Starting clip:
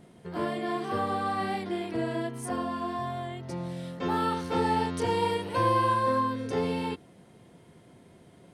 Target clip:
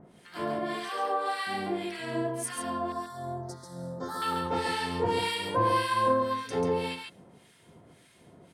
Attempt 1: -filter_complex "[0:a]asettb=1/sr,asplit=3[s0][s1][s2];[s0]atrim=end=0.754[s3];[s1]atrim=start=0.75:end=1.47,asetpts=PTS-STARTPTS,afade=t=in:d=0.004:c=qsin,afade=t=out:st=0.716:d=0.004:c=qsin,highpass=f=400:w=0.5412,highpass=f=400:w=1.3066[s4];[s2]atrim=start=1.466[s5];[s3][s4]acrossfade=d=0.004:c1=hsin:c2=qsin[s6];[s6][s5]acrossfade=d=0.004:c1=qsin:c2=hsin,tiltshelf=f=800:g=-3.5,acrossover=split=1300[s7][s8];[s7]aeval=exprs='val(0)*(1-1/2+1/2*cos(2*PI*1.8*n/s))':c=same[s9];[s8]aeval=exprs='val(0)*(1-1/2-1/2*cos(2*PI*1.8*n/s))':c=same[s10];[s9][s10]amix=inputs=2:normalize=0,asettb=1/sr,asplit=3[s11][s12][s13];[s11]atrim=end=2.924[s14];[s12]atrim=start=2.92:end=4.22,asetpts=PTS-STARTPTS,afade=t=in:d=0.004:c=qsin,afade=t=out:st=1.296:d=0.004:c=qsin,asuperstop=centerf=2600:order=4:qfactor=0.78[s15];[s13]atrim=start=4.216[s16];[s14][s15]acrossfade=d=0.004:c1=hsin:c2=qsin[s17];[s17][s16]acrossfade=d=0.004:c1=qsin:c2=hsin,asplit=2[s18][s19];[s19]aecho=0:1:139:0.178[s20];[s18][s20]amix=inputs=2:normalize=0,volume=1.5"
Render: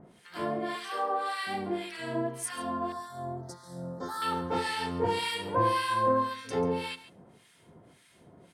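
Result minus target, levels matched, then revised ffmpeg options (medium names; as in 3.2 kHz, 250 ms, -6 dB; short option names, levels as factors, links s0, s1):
echo-to-direct -10.5 dB
-filter_complex "[0:a]asettb=1/sr,asplit=3[s0][s1][s2];[s0]atrim=end=0.754[s3];[s1]atrim=start=0.75:end=1.47,asetpts=PTS-STARTPTS,afade=t=in:d=0.004:c=qsin,afade=t=out:st=0.716:d=0.004:c=qsin,highpass=f=400:w=0.5412,highpass=f=400:w=1.3066[s4];[s2]atrim=start=1.466[s5];[s3][s4]acrossfade=d=0.004:c1=hsin:c2=qsin[s6];[s6][s5]acrossfade=d=0.004:c1=qsin:c2=hsin,tiltshelf=f=800:g=-3.5,acrossover=split=1300[s7][s8];[s7]aeval=exprs='val(0)*(1-1/2+1/2*cos(2*PI*1.8*n/s))':c=same[s9];[s8]aeval=exprs='val(0)*(1-1/2-1/2*cos(2*PI*1.8*n/s))':c=same[s10];[s9][s10]amix=inputs=2:normalize=0,asettb=1/sr,asplit=3[s11][s12][s13];[s11]atrim=end=2.924[s14];[s12]atrim=start=2.92:end=4.22,asetpts=PTS-STARTPTS,afade=t=in:d=0.004:c=qsin,afade=t=out:st=1.296:d=0.004:c=qsin,asuperstop=centerf=2600:order=4:qfactor=0.78[s15];[s13]atrim=start=4.216[s16];[s14][s15]acrossfade=d=0.004:c1=hsin:c2=qsin[s17];[s17][s16]acrossfade=d=0.004:c1=qsin:c2=hsin,asplit=2[s18][s19];[s19]aecho=0:1:139:0.596[s20];[s18][s20]amix=inputs=2:normalize=0,volume=1.5"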